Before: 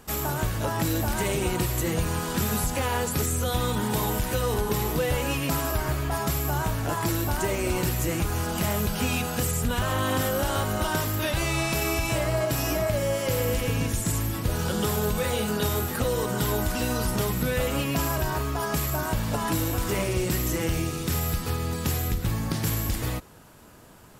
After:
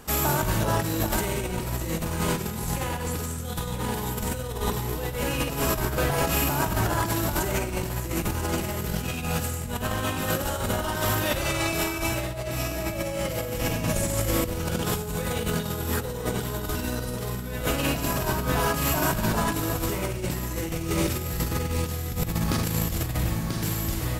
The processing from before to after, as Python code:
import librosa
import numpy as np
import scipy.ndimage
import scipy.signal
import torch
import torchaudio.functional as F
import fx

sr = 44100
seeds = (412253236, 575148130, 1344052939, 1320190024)

p1 = x + fx.echo_single(x, sr, ms=988, db=-6.0, dry=0)
p2 = fx.rev_schroeder(p1, sr, rt60_s=1.1, comb_ms=33, drr_db=3.0)
y = fx.over_compress(p2, sr, threshold_db=-26.0, ratio=-0.5)